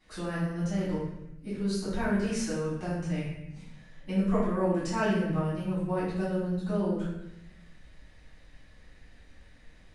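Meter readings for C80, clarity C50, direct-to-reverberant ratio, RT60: 3.5 dB, 0.0 dB, -12.5 dB, 0.85 s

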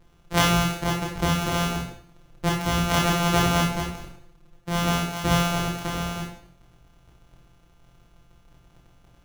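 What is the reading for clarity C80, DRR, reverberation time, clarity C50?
7.5 dB, -2.5 dB, 0.55 s, 3.5 dB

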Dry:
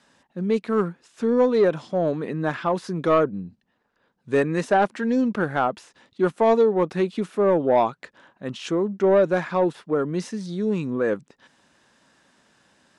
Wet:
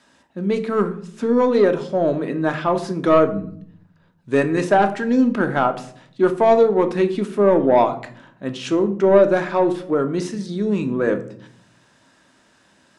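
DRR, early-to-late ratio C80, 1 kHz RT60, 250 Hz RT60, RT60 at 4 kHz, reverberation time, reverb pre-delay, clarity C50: 7.0 dB, 17.5 dB, 0.55 s, 1.0 s, 0.35 s, 0.60 s, 3 ms, 13.5 dB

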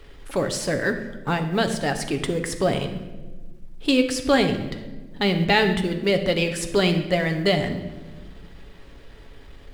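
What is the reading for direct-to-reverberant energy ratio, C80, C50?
5.5 dB, 11.0 dB, 9.5 dB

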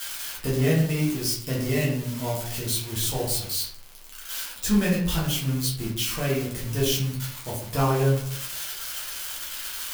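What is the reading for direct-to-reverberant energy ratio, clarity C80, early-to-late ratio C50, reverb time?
-6.5 dB, 7.5 dB, 4.0 dB, 0.65 s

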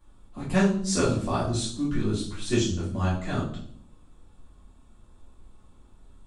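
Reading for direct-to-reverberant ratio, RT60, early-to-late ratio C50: -9.0 dB, 0.65 s, 5.0 dB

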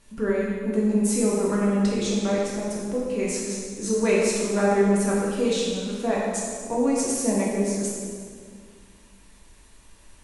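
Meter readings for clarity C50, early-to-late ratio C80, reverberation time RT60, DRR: -1.0 dB, 1.0 dB, 2.0 s, -5.5 dB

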